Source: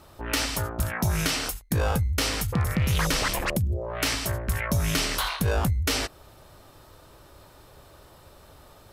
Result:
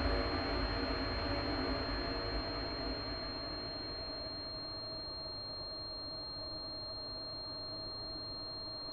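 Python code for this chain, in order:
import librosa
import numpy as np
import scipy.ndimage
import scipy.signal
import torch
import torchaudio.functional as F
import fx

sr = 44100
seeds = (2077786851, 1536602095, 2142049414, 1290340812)

p1 = fx.over_compress(x, sr, threshold_db=-29.0, ratio=-1.0)
p2 = fx.paulstretch(p1, sr, seeds[0], factor=12.0, window_s=1.0, from_s=6.07)
p3 = fx.small_body(p2, sr, hz=(300.0, 640.0, 1100.0), ring_ms=100, db=10)
p4 = p3 + fx.echo_single(p3, sr, ms=1180, db=-7.0, dry=0)
p5 = fx.pwm(p4, sr, carrier_hz=4200.0)
y = F.gain(torch.from_numpy(p5), -3.0).numpy()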